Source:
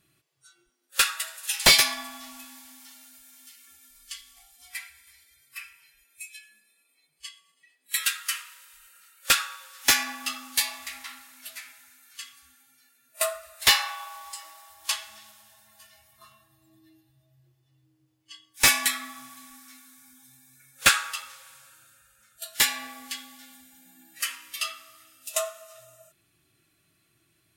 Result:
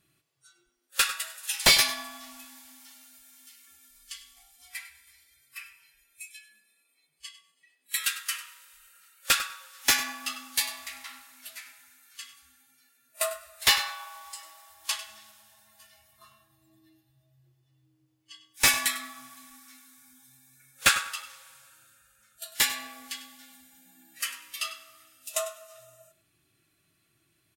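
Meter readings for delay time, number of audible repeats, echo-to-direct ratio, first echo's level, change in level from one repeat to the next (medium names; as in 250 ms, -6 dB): 99 ms, 2, -15.0 dB, -15.0 dB, -16.0 dB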